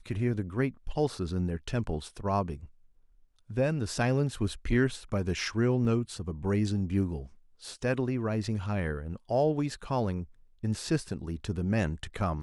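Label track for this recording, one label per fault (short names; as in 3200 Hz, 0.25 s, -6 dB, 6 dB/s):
5.850000	5.850000	gap 2.4 ms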